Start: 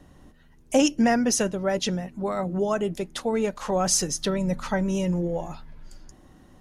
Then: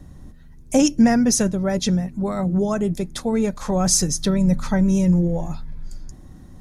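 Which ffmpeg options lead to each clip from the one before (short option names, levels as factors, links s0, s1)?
-af "bass=f=250:g=12,treble=f=4000:g=5,bandreject=f=2900:w=7,areverse,acompressor=mode=upward:threshold=0.0126:ratio=2.5,areverse"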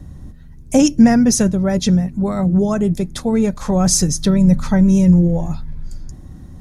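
-af "equalizer=f=83:w=0.45:g=6.5,volume=1.26"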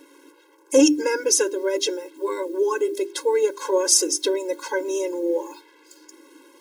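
-af "bandreject=f=50:t=h:w=6,bandreject=f=100:t=h:w=6,bandreject=f=150:t=h:w=6,bandreject=f=200:t=h:w=6,bandreject=f=250:t=h:w=6,bandreject=f=300:t=h:w=6,bandreject=f=350:t=h:w=6,bandreject=f=400:t=h:w=6,acrusher=bits=7:mix=0:aa=0.5,afftfilt=real='re*eq(mod(floor(b*sr/1024/280),2),1)':imag='im*eq(mod(floor(b*sr/1024/280),2),1)':win_size=1024:overlap=0.75,volume=1.33"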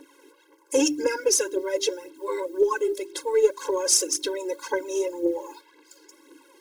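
-af "aphaser=in_gain=1:out_gain=1:delay=2.6:decay=0.59:speed=1.9:type=triangular,volume=0.596"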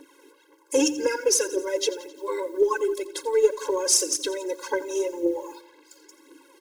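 -af "aecho=1:1:87|174|261|348|435:0.141|0.0805|0.0459|0.0262|0.0149"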